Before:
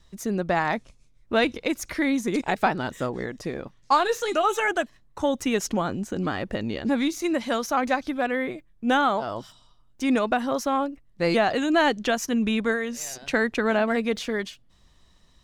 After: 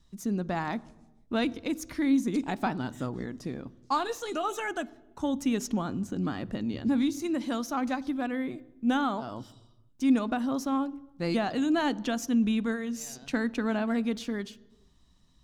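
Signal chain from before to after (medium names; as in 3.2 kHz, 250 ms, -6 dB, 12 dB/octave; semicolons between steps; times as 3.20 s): graphic EQ 250/500/2000 Hz +7/-6/-5 dB; on a send: reverberation RT60 1.1 s, pre-delay 3 ms, DRR 17.5 dB; on the sum: trim -6 dB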